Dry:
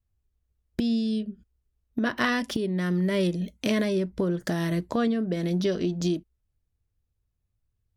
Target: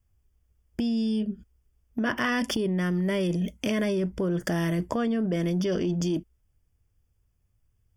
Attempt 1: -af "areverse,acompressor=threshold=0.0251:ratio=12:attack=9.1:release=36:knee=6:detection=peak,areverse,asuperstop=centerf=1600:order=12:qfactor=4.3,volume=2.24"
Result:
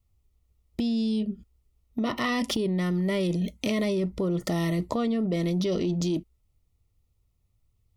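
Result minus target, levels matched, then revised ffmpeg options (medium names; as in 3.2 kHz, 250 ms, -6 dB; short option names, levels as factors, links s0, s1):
2 kHz band -3.5 dB
-af "areverse,acompressor=threshold=0.0251:ratio=12:attack=9.1:release=36:knee=6:detection=peak,areverse,asuperstop=centerf=4000:order=12:qfactor=4.3,volume=2.24"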